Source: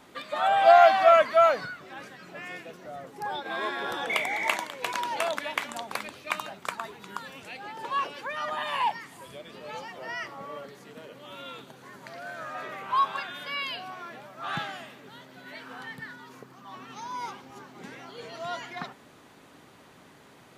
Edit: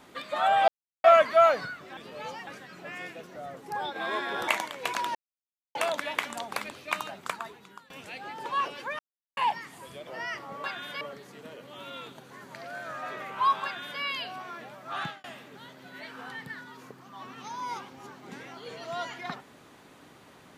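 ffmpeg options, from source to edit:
ffmpeg -i in.wav -filter_complex "[0:a]asplit=14[link_01][link_02][link_03][link_04][link_05][link_06][link_07][link_08][link_09][link_10][link_11][link_12][link_13][link_14];[link_01]atrim=end=0.68,asetpts=PTS-STARTPTS,afade=type=out:start_time=0.676:duration=0.004:curve=hsin[link_15];[link_02]atrim=start=0.68:end=1.04,asetpts=PTS-STARTPTS,volume=0[link_16];[link_03]atrim=start=1.04:end=1.972,asetpts=PTS-STARTPTS,afade=type=in:duration=0.004:curve=hsin[link_17];[link_04]atrim=start=9.458:end=9.962[link_18];[link_05]atrim=start=1.968:end=3.982[link_19];[link_06]atrim=start=4.468:end=5.14,asetpts=PTS-STARTPTS,afade=type=out:start_time=0.668:duration=0.004:curve=hsin,apad=pad_dur=0.6[link_20];[link_07]atrim=start=5.14:end=7.29,asetpts=PTS-STARTPTS,afade=type=in:duration=0.004:curve=hsin,afade=type=out:start_time=1.51:duration=0.64:silence=0.0891251[link_21];[link_08]atrim=start=7.29:end=8.38,asetpts=PTS-STARTPTS,afade=type=in:duration=0.004:curve=hsin:silence=0.0891251,afade=type=out:start_time=1.086:duration=0.004:curve=hsin[link_22];[link_09]atrim=start=8.38:end=8.76,asetpts=PTS-STARTPTS,volume=0[link_23];[link_10]atrim=start=8.76:end=9.462,asetpts=PTS-STARTPTS,afade=type=in:duration=0.004:curve=hsin[link_24];[link_11]atrim=start=9.958:end=10.532[link_25];[link_12]atrim=start=13.158:end=13.532[link_26];[link_13]atrim=start=10.528:end=14.76,asetpts=PTS-STARTPTS,afade=type=out:start_time=3.962:duration=0.27[link_27];[link_14]atrim=start=14.76,asetpts=PTS-STARTPTS,afade=type=in:duration=0.004:curve=hsin[link_28];[link_15][link_16][link_17]concat=n=3:v=0:a=1[link_29];[link_29][link_18]acrossfade=duration=0.004:curve1=hsin:curve2=hsin[link_30];[link_30][link_19]acrossfade=duration=0.004:curve1=hsin:curve2=hsin[link_31];[link_20][link_21][link_22][link_23][link_24]concat=n=5:v=0:a=1[link_32];[link_31][link_32]acrossfade=duration=0.004:curve1=hsin:curve2=hsin[link_33];[link_33][link_25]acrossfade=duration=0.004:curve1=hsin:curve2=hsin[link_34];[link_34][link_26]acrossfade=duration=0.004:curve1=hsin:curve2=hsin[link_35];[link_27][link_28]concat=n=2:v=0:a=1[link_36];[link_35][link_36]acrossfade=duration=0.004:curve1=hsin:curve2=hsin" out.wav

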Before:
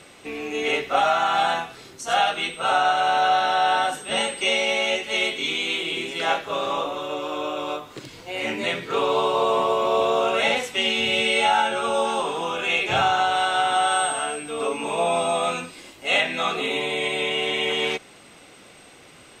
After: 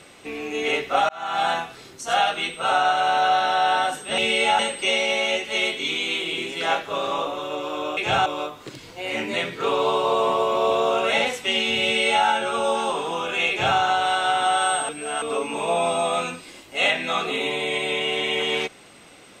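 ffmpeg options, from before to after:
ffmpeg -i in.wav -filter_complex "[0:a]asplit=8[link_01][link_02][link_03][link_04][link_05][link_06][link_07][link_08];[link_01]atrim=end=1.09,asetpts=PTS-STARTPTS,afade=type=out:start_time=1.086:duration=0.004:curve=hsin[link_09];[link_02]atrim=start=1.09:end=4.182,asetpts=PTS-STARTPTS,afade=type=in:duration=0.39[link_10];[link_03]atrim=start=11.138:end=11.552[link_11];[link_04]atrim=start=4.178:end=7.562[link_12];[link_05]atrim=start=12.798:end=13.092[link_13];[link_06]atrim=start=7.558:end=14.192[link_14];[link_07]atrim=start=14.188:end=14.522,asetpts=PTS-STARTPTS,areverse[link_15];[link_08]atrim=start=14.518[link_16];[link_09][link_10]concat=n=2:v=0:a=1[link_17];[link_17][link_11]acrossfade=duration=0.004:curve1=hsin:curve2=hsin[link_18];[link_18][link_12]acrossfade=duration=0.004:curve1=hsin:curve2=hsin[link_19];[link_19][link_13]acrossfade=duration=0.004:curve1=hsin:curve2=hsin[link_20];[link_20][link_14]acrossfade=duration=0.004:curve1=hsin:curve2=hsin[link_21];[link_21][link_15]acrossfade=duration=0.004:curve1=hsin:curve2=hsin[link_22];[link_22][link_16]acrossfade=duration=0.004:curve1=hsin:curve2=hsin" out.wav

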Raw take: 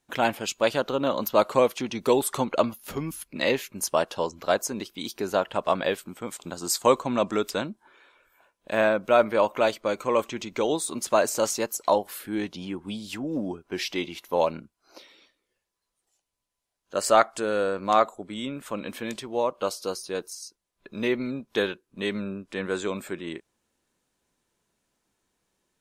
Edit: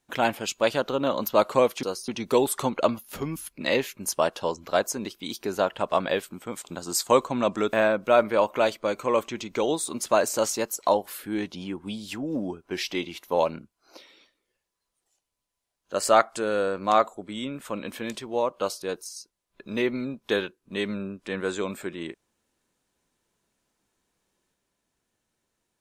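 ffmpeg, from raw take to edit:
ffmpeg -i in.wav -filter_complex "[0:a]asplit=5[link_01][link_02][link_03][link_04][link_05];[link_01]atrim=end=1.832[link_06];[link_02]atrim=start=19.828:end=20.082[link_07];[link_03]atrim=start=1.828:end=7.482[link_08];[link_04]atrim=start=8.738:end=19.832[link_09];[link_05]atrim=start=20.078[link_10];[link_06][link_07]acrossfade=duration=0.004:curve1=hsin:curve2=hsin[link_11];[link_11][link_08]acrossfade=duration=0.004:curve1=hsin:curve2=hsin[link_12];[link_12][link_09]acrossfade=duration=0.004:curve1=hsin:curve2=hsin[link_13];[link_13][link_10]acrossfade=duration=0.004:curve1=hsin:curve2=hsin" out.wav

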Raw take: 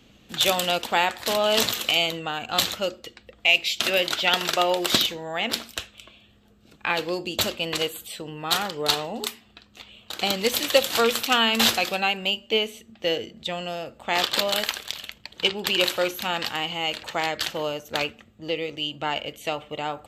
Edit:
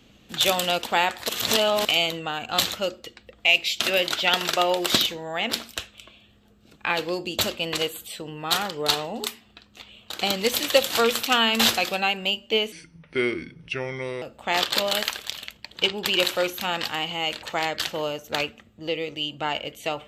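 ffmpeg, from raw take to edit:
ffmpeg -i in.wav -filter_complex "[0:a]asplit=5[link_01][link_02][link_03][link_04][link_05];[link_01]atrim=end=1.292[link_06];[link_02]atrim=start=1.288:end=1.852,asetpts=PTS-STARTPTS,areverse[link_07];[link_03]atrim=start=1.848:end=12.724[link_08];[link_04]atrim=start=12.72:end=13.83,asetpts=PTS-STARTPTS,asetrate=32634,aresample=44100[link_09];[link_05]atrim=start=13.826[link_10];[link_06][link_07]acrossfade=duration=0.004:curve1=hsin:curve2=hsin[link_11];[link_11][link_08]acrossfade=duration=0.004:curve1=hsin:curve2=hsin[link_12];[link_12][link_09]acrossfade=duration=0.004:curve1=hsin:curve2=hsin[link_13];[link_13][link_10]acrossfade=duration=0.004:curve1=hsin:curve2=hsin" out.wav

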